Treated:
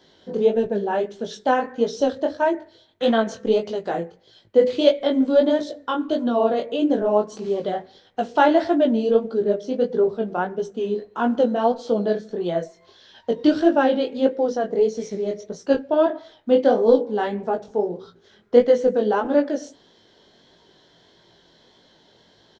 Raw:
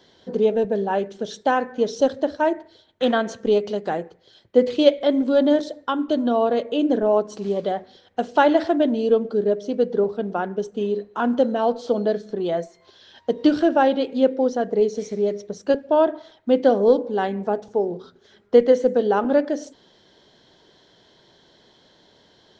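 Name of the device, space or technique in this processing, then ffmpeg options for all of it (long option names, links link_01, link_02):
double-tracked vocal: -filter_complex "[0:a]asettb=1/sr,asplit=3[link_01][link_02][link_03];[link_01]atrim=end=15.464[link_04];[link_02]atrim=start=15.46:end=17.15,asetpts=PTS-STARTPTS,afade=type=in:duration=0.004:curve=qsin,afade=type=out:start_time=1.686:duration=0.004:curve=qsin,asplit=2[link_05][link_06];[link_06]adelay=26,volume=-12dB[link_07];[link_05][link_07]amix=inputs=2:normalize=0,atrim=end_sample=74529[link_08];[link_03]atrim=start=17.146[link_09];[link_04][link_08]acrossfade=duration=0.004:curve1=hsin:curve2=qsin[link_10];[link_10][link_09]acrossfade=duration=0.004:curve1=qsin:curve2=hsin,asplit=2[link_11][link_12];[link_12]adelay=18,volume=-13dB[link_13];[link_11][link_13]amix=inputs=2:normalize=0,flanger=delay=17:depth=6.9:speed=1.6,volume=2.5dB"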